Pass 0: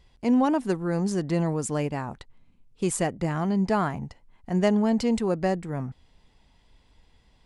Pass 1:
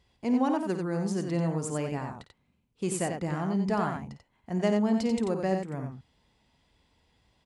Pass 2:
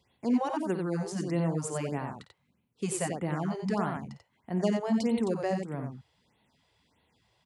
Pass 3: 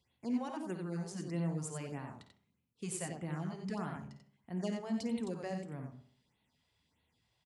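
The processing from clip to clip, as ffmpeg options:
-af "highpass=68,aecho=1:1:53|90:0.266|0.531,volume=0.562"
-filter_complex "[0:a]highpass=100,acrossover=split=430|3000[s0][s1][s2];[s1]acompressor=threshold=0.0398:ratio=6[s3];[s0][s3][s2]amix=inputs=3:normalize=0,afftfilt=real='re*(1-between(b*sr/1024,210*pow(6600/210,0.5+0.5*sin(2*PI*1.6*pts/sr))/1.41,210*pow(6600/210,0.5+0.5*sin(2*PI*1.6*pts/sr))*1.41))':imag='im*(1-between(b*sr/1024,210*pow(6600/210,0.5+0.5*sin(2*PI*1.6*pts/sr))/1.41,210*pow(6600/210,0.5+0.5*sin(2*PI*1.6*pts/sr))*1.41))':win_size=1024:overlap=0.75"
-filter_complex "[0:a]equalizer=f=630:t=o:w=2.7:g=-5.5,bandreject=f=199.2:t=h:w=4,bandreject=f=398.4:t=h:w=4,bandreject=f=597.6:t=h:w=4,bandreject=f=796.8:t=h:w=4,bandreject=f=996:t=h:w=4,bandreject=f=1195.2:t=h:w=4,bandreject=f=1394.4:t=h:w=4,bandreject=f=1593.6:t=h:w=4,bandreject=f=1792.8:t=h:w=4,bandreject=f=1992:t=h:w=4,bandreject=f=2191.2:t=h:w=4,bandreject=f=2390.4:t=h:w=4,bandreject=f=2589.6:t=h:w=4,bandreject=f=2788.8:t=h:w=4,bandreject=f=2988:t=h:w=4,bandreject=f=3187.2:t=h:w=4,bandreject=f=3386.4:t=h:w=4,bandreject=f=3585.6:t=h:w=4,bandreject=f=3784.8:t=h:w=4,bandreject=f=3984:t=h:w=4,bandreject=f=4183.2:t=h:w=4,bandreject=f=4382.4:t=h:w=4,bandreject=f=4581.6:t=h:w=4,bandreject=f=4780.8:t=h:w=4,bandreject=f=4980:t=h:w=4,bandreject=f=5179.2:t=h:w=4,bandreject=f=5378.4:t=h:w=4,bandreject=f=5577.6:t=h:w=4,bandreject=f=5776.8:t=h:w=4,bandreject=f=5976:t=h:w=4,bandreject=f=6175.2:t=h:w=4,bandreject=f=6374.4:t=h:w=4,bandreject=f=6573.6:t=h:w=4,bandreject=f=6772.8:t=h:w=4,bandreject=f=6972:t=h:w=4,bandreject=f=7171.2:t=h:w=4,bandreject=f=7370.4:t=h:w=4,bandreject=f=7569.6:t=h:w=4,bandreject=f=7768.8:t=h:w=4,asplit=2[s0][s1];[s1]adelay=65,lowpass=f=1800:p=1,volume=0.251,asplit=2[s2][s3];[s3]adelay=65,lowpass=f=1800:p=1,volume=0.5,asplit=2[s4][s5];[s5]adelay=65,lowpass=f=1800:p=1,volume=0.5,asplit=2[s6][s7];[s7]adelay=65,lowpass=f=1800:p=1,volume=0.5,asplit=2[s8][s9];[s9]adelay=65,lowpass=f=1800:p=1,volume=0.5[s10];[s2][s4][s6][s8][s10]amix=inputs=5:normalize=0[s11];[s0][s11]amix=inputs=2:normalize=0,volume=0.501"

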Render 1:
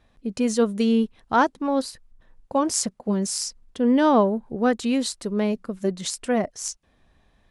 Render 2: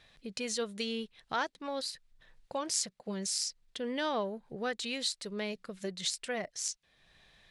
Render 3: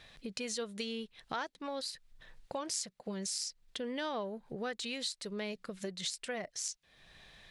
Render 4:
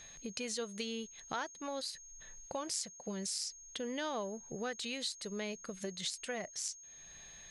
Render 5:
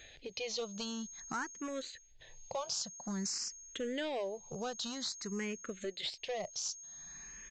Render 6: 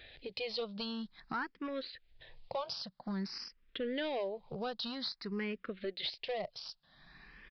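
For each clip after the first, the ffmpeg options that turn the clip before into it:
-af "equalizer=f=250:t=o:w=1:g=-11,equalizer=f=1000:t=o:w=1:g=-4,equalizer=f=2000:t=o:w=1:g=6,equalizer=f=4000:t=o:w=1:g=9,equalizer=f=8000:t=o:w=1:g=3,acompressor=threshold=0.00251:ratio=1.5,lowshelf=f=110:t=q:w=1.5:g=-7"
-af "acompressor=threshold=0.00447:ratio=2,volume=1.78"
-af "aeval=exprs='val(0)+0.00282*sin(2*PI*6500*n/s)':c=same,volume=0.891"
-filter_complex "[0:a]aresample=16000,asoftclip=type=hard:threshold=0.0178,aresample=44100,asplit=2[s0][s1];[s1]afreqshift=0.51[s2];[s0][s2]amix=inputs=2:normalize=1,volume=1.68"
-af "aresample=11025,aresample=44100,volume=1.12"

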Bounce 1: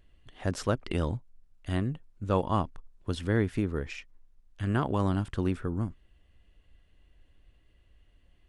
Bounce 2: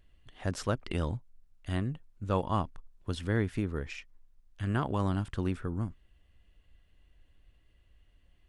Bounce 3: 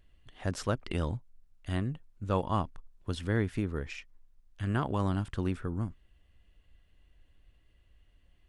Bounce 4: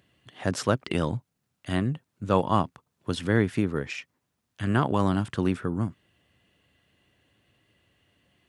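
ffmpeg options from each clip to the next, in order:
-af "equalizer=f=370:t=o:w=1.8:g=-2.5,volume=0.841"
-af anull
-af "highpass=f=110:w=0.5412,highpass=f=110:w=1.3066,volume=2.37"

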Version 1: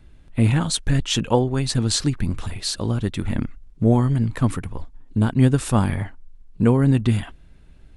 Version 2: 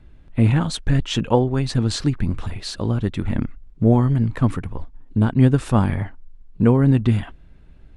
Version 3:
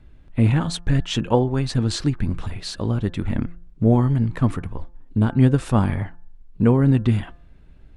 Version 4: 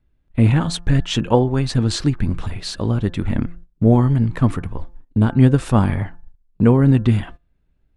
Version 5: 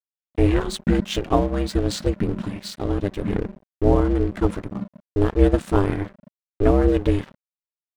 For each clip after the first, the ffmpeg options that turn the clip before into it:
-af "lowpass=f=2500:p=1,volume=1.19"
-af "bandreject=f=173:t=h:w=4,bandreject=f=346:t=h:w=4,bandreject=f=519:t=h:w=4,bandreject=f=692:t=h:w=4,bandreject=f=865:t=h:w=4,bandreject=f=1038:t=h:w=4,bandreject=f=1211:t=h:w=4,bandreject=f=1384:t=h:w=4,bandreject=f=1557:t=h:w=4,bandreject=f=1730:t=h:w=4,volume=0.891"
-af "agate=range=0.112:threshold=0.0141:ratio=16:detection=peak,volume=1.41"
-af "aeval=exprs='val(0)*sin(2*PI*200*n/s)':c=same,aeval=exprs='sgn(val(0))*max(abs(val(0))-0.0141,0)':c=same"

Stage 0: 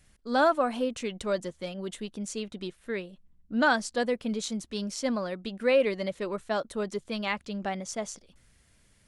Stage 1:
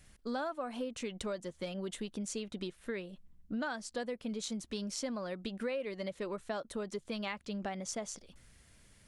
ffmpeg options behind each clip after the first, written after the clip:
-af "acompressor=threshold=0.0141:ratio=6,volume=1.19"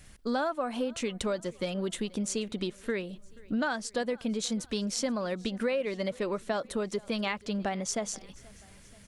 -af "aecho=1:1:481|962|1443|1924:0.0631|0.0347|0.0191|0.0105,volume=2.24"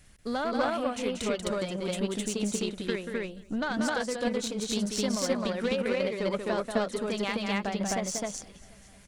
-af "aecho=1:1:186.6|259.5:0.562|1,aeval=exprs='0.224*(cos(1*acos(clip(val(0)/0.224,-1,1)))-cos(1*PI/2))+0.0112*(cos(6*acos(clip(val(0)/0.224,-1,1)))-cos(6*PI/2))+0.0112*(cos(7*acos(clip(val(0)/0.224,-1,1)))-cos(7*PI/2))+0.00708*(cos(8*acos(clip(val(0)/0.224,-1,1)))-cos(8*PI/2))':c=same"

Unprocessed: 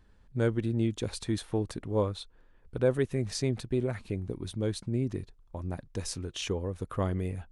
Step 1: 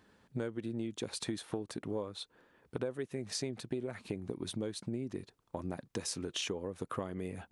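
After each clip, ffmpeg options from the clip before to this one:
-af "highpass=180,acompressor=threshold=0.0126:ratio=12,volume=1.68"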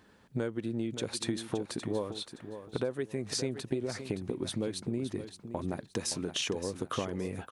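-af "aecho=1:1:570|1140|1710:0.299|0.0716|0.0172,volume=1.58"

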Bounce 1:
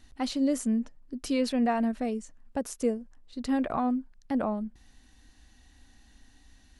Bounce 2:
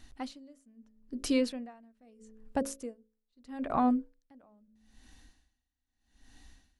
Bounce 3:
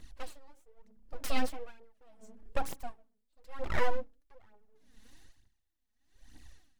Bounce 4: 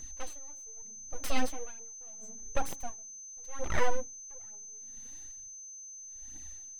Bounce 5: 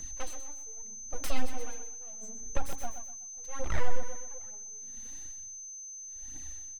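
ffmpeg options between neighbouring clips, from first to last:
-af "bandreject=f=54.68:t=h:w=4,bandreject=f=109.36:t=h:w=4,bandreject=f=164.04:t=h:w=4,bandreject=f=218.72:t=h:w=4,bandreject=f=273.4:t=h:w=4,bandreject=f=328.08:t=h:w=4,bandreject=f=382.76:t=h:w=4,bandreject=f=437.44:t=h:w=4,bandreject=f=492.12:t=h:w=4,bandreject=f=546.8:t=h:w=4,bandreject=f=601.48:t=h:w=4,aeval=exprs='val(0)*pow(10,-34*(0.5-0.5*cos(2*PI*0.78*n/s))/20)':c=same,volume=1.26"
-af "aeval=exprs='abs(val(0))':c=same,aphaser=in_gain=1:out_gain=1:delay=4.9:decay=0.6:speed=1.1:type=triangular,volume=0.794"
-af "aeval=exprs='val(0)+0.00562*sin(2*PI*6200*n/s)':c=same,volume=1.12"
-filter_complex "[0:a]aecho=1:1:124|248|372|496:0.251|0.0879|0.0308|0.0108,acrossover=split=120[s0][s1];[s1]acompressor=threshold=0.0112:ratio=5[s2];[s0][s2]amix=inputs=2:normalize=0,volume=1.5"

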